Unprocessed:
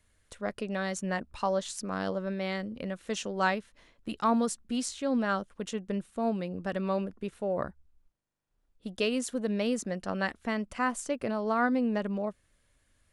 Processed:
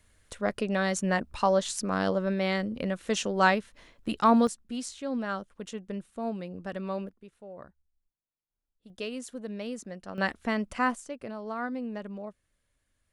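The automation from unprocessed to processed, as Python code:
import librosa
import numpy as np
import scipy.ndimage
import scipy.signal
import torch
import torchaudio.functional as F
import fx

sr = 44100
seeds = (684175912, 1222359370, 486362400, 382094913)

y = fx.gain(x, sr, db=fx.steps((0.0, 5.0), (4.47, -3.5), (7.09, -14.0), (8.9, -7.0), (10.18, 2.5), (10.95, -7.0)))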